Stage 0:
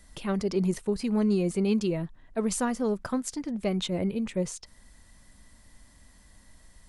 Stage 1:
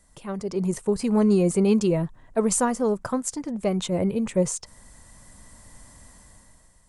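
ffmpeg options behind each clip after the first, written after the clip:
ffmpeg -i in.wav -af "equalizer=frequency=125:width_type=o:width=1:gain=7,equalizer=frequency=500:width_type=o:width=1:gain=5,equalizer=frequency=1000:width_type=o:width=1:gain=6,equalizer=frequency=4000:width_type=o:width=1:gain=-3,equalizer=frequency=8000:width_type=o:width=1:gain=9,dynaudnorm=framelen=210:gausssize=7:maxgain=12dB,volume=-8dB" out.wav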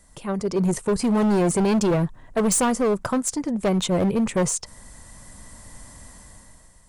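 ffmpeg -i in.wav -af "asoftclip=type=hard:threshold=-22dB,volume=5dB" out.wav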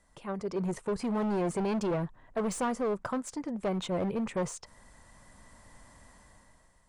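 ffmpeg -i in.wav -filter_complex "[0:a]asplit=2[link_01][link_02];[link_02]highpass=frequency=720:poles=1,volume=5dB,asoftclip=type=tanh:threshold=-16.5dB[link_03];[link_01][link_03]amix=inputs=2:normalize=0,lowpass=frequency=1900:poles=1,volume=-6dB,volume=-6.5dB" out.wav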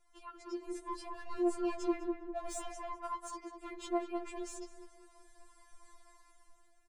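ffmpeg -i in.wav -filter_complex "[0:a]asplit=2[link_01][link_02];[link_02]adelay=201,lowpass=frequency=1300:poles=1,volume=-4dB,asplit=2[link_03][link_04];[link_04]adelay=201,lowpass=frequency=1300:poles=1,volume=0.42,asplit=2[link_05][link_06];[link_06]adelay=201,lowpass=frequency=1300:poles=1,volume=0.42,asplit=2[link_07][link_08];[link_08]adelay=201,lowpass=frequency=1300:poles=1,volume=0.42,asplit=2[link_09][link_10];[link_10]adelay=201,lowpass=frequency=1300:poles=1,volume=0.42[link_11];[link_03][link_05][link_07][link_09][link_11]amix=inputs=5:normalize=0[link_12];[link_01][link_12]amix=inputs=2:normalize=0,afftfilt=real='re*4*eq(mod(b,16),0)':imag='im*4*eq(mod(b,16),0)':win_size=2048:overlap=0.75,volume=-3.5dB" out.wav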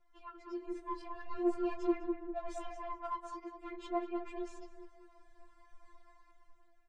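ffmpeg -i in.wav -af "flanger=delay=5.5:depth=9.9:regen=-37:speed=0.45:shape=triangular,adynamicsmooth=sensitivity=6.5:basefreq=3400,volume=4dB" out.wav

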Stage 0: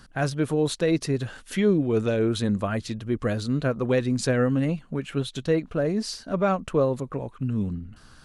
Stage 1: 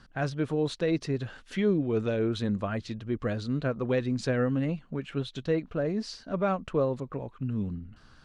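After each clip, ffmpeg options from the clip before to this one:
ffmpeg -i in.wav -af "lowpass=5100,volume=-4.5dB" out.wav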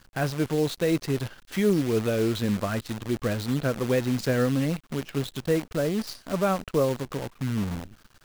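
ffmpeg -i in.wav -af "acrusher=bits=7:dc=4:mix=0:aa=0.000001,volume=3dB" out.wav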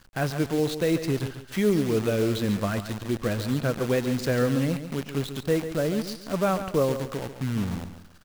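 ffmpeg -i in.wav -af "aecho=1:1:140|280|420:0.299|0.0955|0.0306" out.wav

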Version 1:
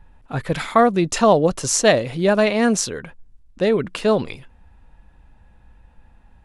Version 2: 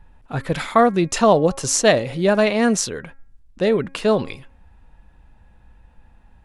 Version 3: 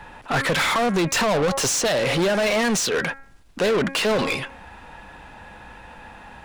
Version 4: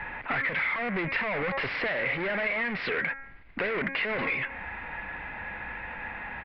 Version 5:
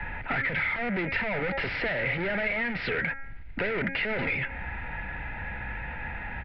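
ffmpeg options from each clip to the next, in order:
ffmpeg -i in.wav -af "bandreject=frequency=272.5:width_type=h:width=4,bandreject=frequency=545:width_type=h:width=4,bandreject=frequency=817.5:width_type=h:width=4,bandreject=frequency=1090:width_type=h:width=4,bandreject=frequency=1362.5:width_type=h:width=4,bandreject=frequency=1635:width_type=h:width=4,bandreject=frequency=1907.5:width_type=h:width=4,bandreject=frequency=2180:width_type=h:width=4,bandreject=frequency=2452.5:width_type=h:width=4" out.wav
ffmpeg -i in.wav -filter_complex "[0:a]acrossover=split=160|3000[link_01][link_02][link_03];[link_02]acompressor=threshold=-18dB:ratio=6[link_04];[link_01][link_04][link_03]amix=inputs=3:normalize=0,alimiter=limit=-14dB:level=0:latency=1:release=207,asplit=2[link_05][link_06];[link_06]highpass=frequency=720:poles=1,volume=28dB,asoftclip=type=tanh:threshold=-14dB[link_07];[link_05][link_07]amix=inputs=2:normalize=0,lowpass=frequency=5600:poles=1,volume=-6dB" out.wav
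ffmpeg -i in.wav -af "aresample=11025,asoftclip=type=tanh:threshold=-24.5dB,aresample=44100,lowpass=frequency=2100:width_type=q:width=5.5,acompressor=threshold=-27dB:ratio=5" out.wav
ffmpeg -i in.wav -filter_complex "[0:a]acrossover=split=140|410|1800[link_01][link_02][link_03][link_04];[link_01]aeval=exprs='0.02*sin(PI/2*3.16*val(0)/0.02)':channel_layout=same[link_05];[link_05][link_02][link_03][link_04]amix=inputs=4:normalize=0,asuperstop=centerf=1100:order=4:qfactor=5.6" out.wav

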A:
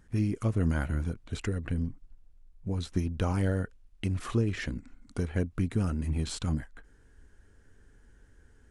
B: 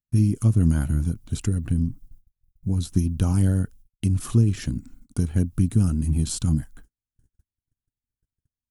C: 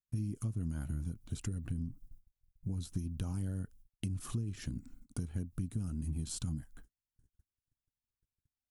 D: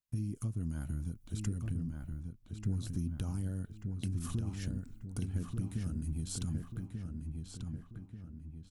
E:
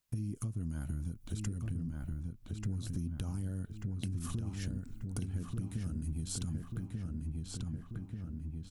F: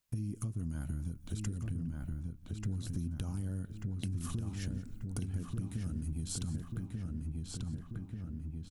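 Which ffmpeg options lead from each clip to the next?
ffmpeg -i in.wav -af "aemphasis=mode=production:type=75fm,agate=range=-44dB:threshold=-50dB:ratio=16:detection=peak,equalizer=frequency=125:width_type=o:width=1:gain=6,equalizer=frequency=250:width_type=o:width=1:gain=3,equalizer=frequency=500:width_type=o:width=1:gain=-9,equalizer=frequency=1000:width_type=o:width=1:gain=-4,equalizer=frequency=2000:width_type=o:width=1:gain=-12,equalizer=frequency=4000:width_type=o:width=1:gain=-5,equalizer=frequency=8000:width_type=o:width=1:gain=-6,volume=6dB" out.wav
ffmpeg -i in.wav -af "acompressor=threshold=-28dB:ratio=4,volume=-7dB" out.wav
ffmpeg -i in.wav -filter_complex "[0:a]asplit=2[link_01][link_02];[link_02]adelay=1188,lowpass=frequency=3400:poles=1,volume=-4.5dB,asplit=2[link_03][link_04];[link_04]adelay=1188,lowpass=frequency=3400:poles=1,volume=0.48,asplit=2[link_05][link_06];[link_06]adelay=1188,lowpass=frequency=3400:poles=1,volume=0.48,asplit=2[link_07][link_08];[link_08]adelay=1188,lowpass=frequency=3400:poles=1,volume=0.48,asplit=2[link_09][link_10];[link_10]adelay=1188,lowpass=frequency=3400:poles=1,volume=0.48,asplit=2[link_11][link_12];[link_12]adelay=1188,lowpass=frequency=3400:poles=1,volume=0.48[link_13];[link_01][link_03][link_05][link_07][link_09][link_11][link_13]amix=inputs=7:normalize=0" out.wav
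ffmpeg -i in.wav -af "acompressor=threshold=-48dB:ratio=2.5,volume=9dB" out.wav
ffmpeg -i in.wav -af "aecho=1:1:176:0.119" out.wav

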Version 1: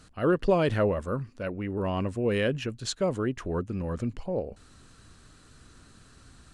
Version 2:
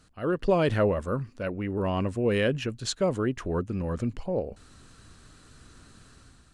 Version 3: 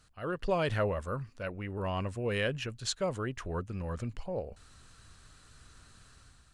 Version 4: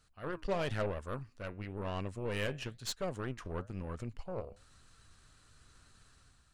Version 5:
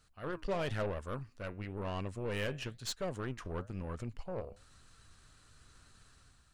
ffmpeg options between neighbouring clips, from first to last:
ffmpeg -i in.wav -af "dynaudnorm=framelen=120:gausssize=7:maxgain=7dB,volume=-5.5dB" out.wav
ffmpeg -i in.wav -af "equalizer=frequency=280:width=0.8:gain=-9,volume=-2.5dB" out.wav
ffmpeg -i in.wav -af "flanger=delay=2.2:depth=8:regen=81:speed=1:shape=sinusoidal,aeval=exprs='0.0841*(cos(1*acos(clip(val(0)/0.0841,-1,1)))-cos(1*PI/2))+0.0075*(cos(8*acos(clip(val(0)/0.0841,-1,1)))-cos(8*PI/2))':channel_layout=same,volume=-1dB" out.wav
ffmpeg -i in.wav -af "asoftclip=type=tanh:threshold=-27.5dB,volume=1dB" out.wav

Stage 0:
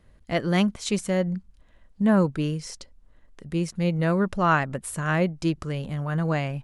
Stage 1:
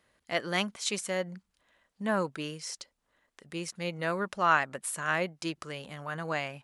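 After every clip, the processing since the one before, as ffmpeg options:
ffmpeg -i in.wav -af "highpass=frequency=980:poles=1" out.wav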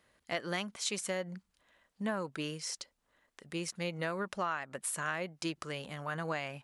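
ffmpeg -i in.wav -af "acompressor=threshold=-31dB:ratio=8" out.wav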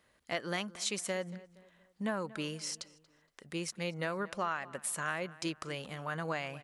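ffmpeg -i in.wav -filter_complex "[0:a]asplit=2[link_01][link_02];[link_02]adelay=234,lowpass=frequency=2900:poles=1,volume=-18.5dB,asplit=2[link_03][link_04];[link_04]adelay=234,lowpass=frequency=2900:poles=1,volume=0.42,asplit=2[link_05][link_06];[link_06]adelay=234,lowpass=frequency=2900:poles=1,volume=0.42[link_07];[link_01][link_03][link_05][link_07]amix=inputs=4:normalize=0" out.wav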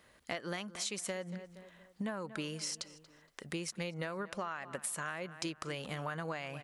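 ffmpeg -i in.wav -af "acompressor=threshold=-42dB:ratio=6,volume=6dB" out.wav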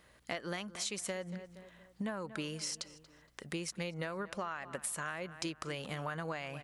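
ffmpeg -i in.wav -af "aeval=exprs='val(0)+0.000282*(sin(2*PI*60*n/s)+sin(2*PI*2*60*n/s)/2+sin(2*PI*3*60*n/s)/3+sin(2*PI*4*60*n/s)/4+sin(2*PI*5*60*n/s)/5)':channel_layout=same" out.wav

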